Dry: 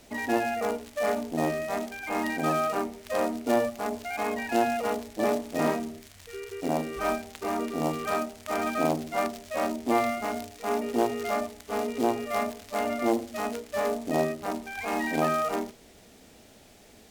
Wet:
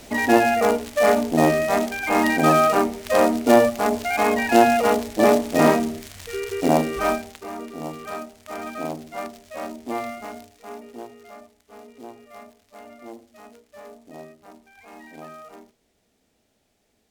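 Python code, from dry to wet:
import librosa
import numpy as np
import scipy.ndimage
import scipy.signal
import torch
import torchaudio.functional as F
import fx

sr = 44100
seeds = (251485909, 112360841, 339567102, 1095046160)

y = fx.gain(x, sr, db=fx.line((6.75, 10.0), (7.29, 3.5), (7.46, -4.0), (10.23, -4.0), (11.21, -15.0)))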